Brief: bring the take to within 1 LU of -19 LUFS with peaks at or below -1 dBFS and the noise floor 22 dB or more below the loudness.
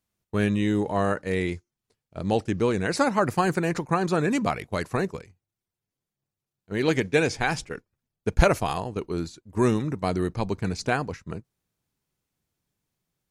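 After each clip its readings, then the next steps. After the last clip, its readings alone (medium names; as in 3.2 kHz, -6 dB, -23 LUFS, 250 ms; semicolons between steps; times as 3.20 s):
loudness -26.0 LUFS; peak level -4.0 dBFS; loudness target -19.0 LUFS
-> trim +7 dB; peak limiter -1 dBFS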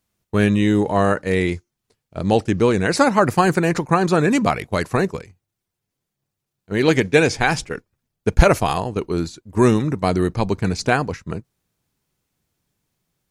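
loudness -19.0 LUFS; peak level -1.0 dBFS; noise floor -81 dBFS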